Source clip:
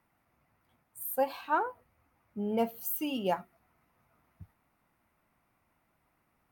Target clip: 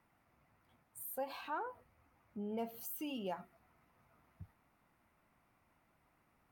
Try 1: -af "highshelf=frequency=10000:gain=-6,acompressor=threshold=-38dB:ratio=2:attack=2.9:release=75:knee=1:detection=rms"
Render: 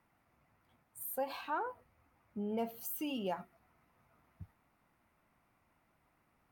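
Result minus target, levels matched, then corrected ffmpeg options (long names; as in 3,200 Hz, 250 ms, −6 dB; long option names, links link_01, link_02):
downward compressor: peak gain reduction −4 dB
-af "highshelf=frequency=10000:gain=-6,acompressor=threshold=-45.5dB:ratio=2:attack=2.9:release=75:knee=1:detection=rms"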